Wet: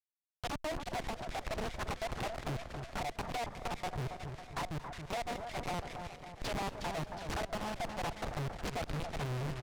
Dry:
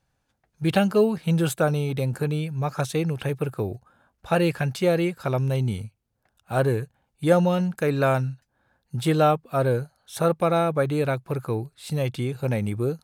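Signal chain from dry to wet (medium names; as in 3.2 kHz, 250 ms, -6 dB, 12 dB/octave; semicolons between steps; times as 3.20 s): gliding tape speed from 149% -> 122%; Chebyshev band-stop 130–700 Hz, order 4; low-pass that closes with the level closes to 540 Hz, closed at -21.5 dBFS; peaking EQ 750 Hz -3.5 dB 0.93 oct; in parallel at -0.5 dB: compression 6:1, threshold -36 dBFS, peak gain reduction 12.5 dB; on the sum: Schmitt trigger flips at -31 dBFS; distance through air 53 m; on a send: two-band feedback delay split 1.5 kHz, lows 275 ms, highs 363 ms, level -9 dB; on the sum: valve stage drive 37 dB, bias 0.65; frequency-shifting echo 229 ms, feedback 53%, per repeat -80 Hz, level -17 dB; loudspeaker Doppler distortion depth 0.95 ms; trim +3 dB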